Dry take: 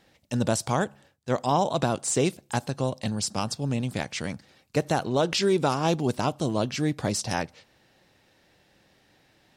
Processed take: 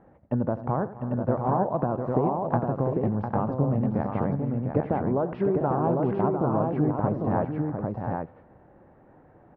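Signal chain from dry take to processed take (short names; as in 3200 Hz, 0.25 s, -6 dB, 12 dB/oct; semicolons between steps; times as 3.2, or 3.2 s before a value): LPF 1200 Hz 24 dB/oct; compressor, threshold -31 dBFS, peak gain reduction 12 dB; tapped delay 86/255/321/701/799 ms -15/-18.5/-17/-6.5/-3.5 dB; gain +8 dB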